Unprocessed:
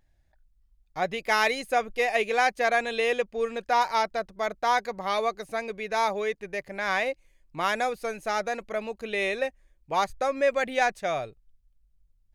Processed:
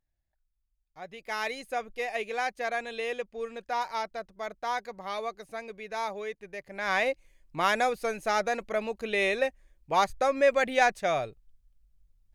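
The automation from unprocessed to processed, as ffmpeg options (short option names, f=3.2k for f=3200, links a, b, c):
-af "volume=1dB,afade=t=in:st=1.03:d=0.52:silence=0.398107,afade=t=in:st=6.65:d=0.41:silence=0.375837"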